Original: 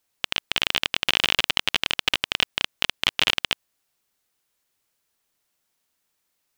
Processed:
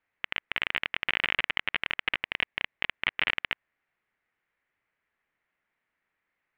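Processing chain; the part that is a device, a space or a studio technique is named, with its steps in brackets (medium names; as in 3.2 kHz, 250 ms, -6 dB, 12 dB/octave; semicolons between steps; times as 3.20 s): 2.23–2.86 s: peaking EQ 1.4 kHz -4.5 dB 0.48 oct; overdriven synthesiser ladder filter (saturation -7.5 dBFS, distortion -13 dB; four-pole ladder low-pass 2.3 kHz, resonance 55%); trim +7 dB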